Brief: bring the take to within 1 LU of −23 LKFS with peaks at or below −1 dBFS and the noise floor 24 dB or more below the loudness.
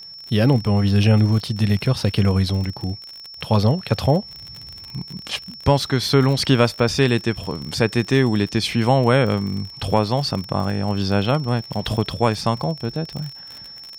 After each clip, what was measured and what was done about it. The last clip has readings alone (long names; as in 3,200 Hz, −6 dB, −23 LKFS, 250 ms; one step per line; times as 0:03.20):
crackle rate 49 per second; interfering tone 5,400 Hz; level of the tone −36 dBFS; integrated loudness −20.0 LKFS; sample peak −4.0 dBFS; target loudness −23.0 LKFS
→ click removal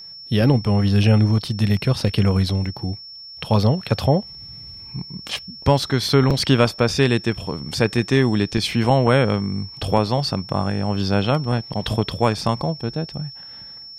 crackle rate 0.36 per second; interfering tone 5,400 Hz; level of the tone −36 dBFS
→ notch filter 5,400 Hz, Q 30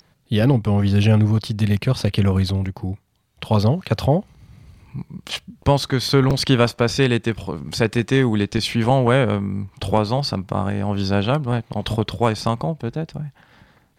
interfering tone none found; integrated loudness −20.0 LKFS; sample peak −4.0 dBFS; target loudness −23.0 LKFS
→ level −3 dB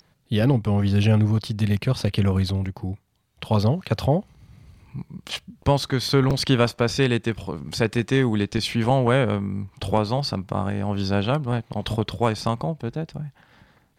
integrated loudness −23.0 LKFS; sample peak −7.0 dBFS; background noise floor −63 dBFS